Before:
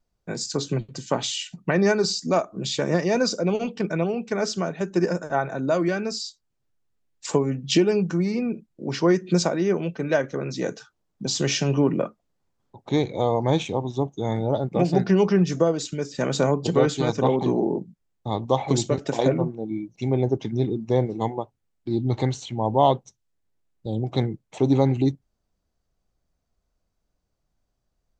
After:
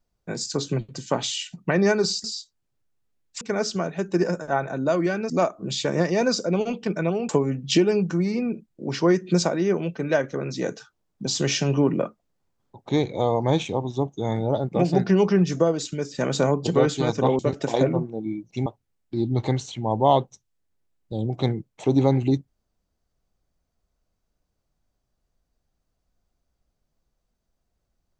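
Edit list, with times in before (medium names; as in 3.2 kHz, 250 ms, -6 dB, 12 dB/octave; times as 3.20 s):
2.24–4.23 s: swap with 6.12–7.29 s
17.39–18.84 s: delete
20.11–21.40 s: delete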